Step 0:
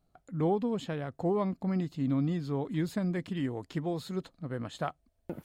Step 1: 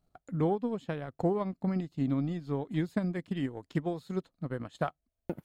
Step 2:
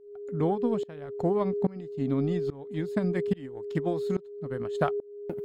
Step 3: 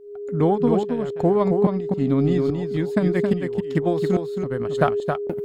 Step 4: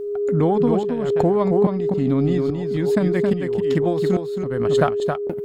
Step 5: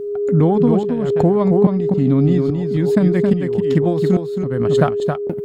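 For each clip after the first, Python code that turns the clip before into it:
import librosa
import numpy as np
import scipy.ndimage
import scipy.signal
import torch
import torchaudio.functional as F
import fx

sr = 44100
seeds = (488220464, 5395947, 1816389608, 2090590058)

y1 = fx.transient(x, sr, attack_db=6, sustain_db=-10)
y1 = y1 * 10.0 ** (-2.0 / 20.0)
y2 = y1 + 10.0 ** (-33.0 / 20.0) * np.sin(2.0 * np.pi * 410.0 * np.arange(len(y1)) / sr)
y2 = fx.tremolo_shape(y2, sr, shape='saw_up', hz=1.2, depth_pct=95)
y2 = y2 * 10.0 ** (6.5 / 20.0)
y3 = y2 + 10.0 ** (-5.5 / 20.0) * np.pad(y2, (int(270 * sr / 1000.0), 0))[:len(y2)]
y3 = y3 * 10.0 ** (7.5 / 20.0)
y4 = fx.pre_swell(y3, sr, db_per_s=31.0)
y5 = fx.peak_eq(y4, sr, hz=150.0, db=6.5, octaves=2.2)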